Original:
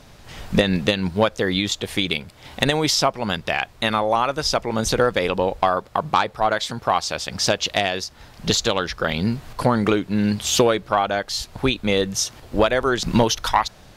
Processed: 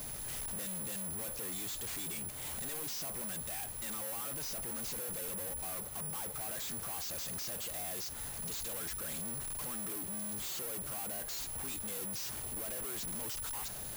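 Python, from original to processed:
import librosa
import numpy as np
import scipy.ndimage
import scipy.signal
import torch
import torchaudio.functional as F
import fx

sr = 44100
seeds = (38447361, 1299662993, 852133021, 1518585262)

y = (np.kron(x[::4], np.eye(4)[0]) * 4)[:len(x)]
y = fx.slew_limit(y, sr, full_power_hz=150.0)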